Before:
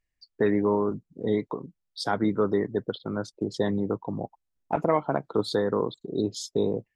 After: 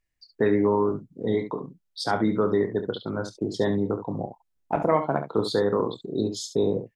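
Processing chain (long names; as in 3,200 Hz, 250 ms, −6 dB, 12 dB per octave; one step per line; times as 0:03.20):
ambience of single reflections 27 ms −9.5 dB, 69 ms −9.5 dB
level +1 dB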